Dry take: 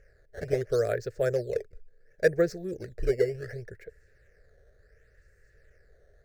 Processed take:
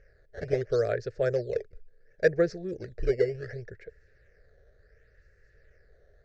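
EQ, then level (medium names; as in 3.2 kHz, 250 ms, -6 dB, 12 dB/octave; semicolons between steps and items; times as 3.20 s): low-pass 5.7 kHz 24 dB/octave; 0.0 dB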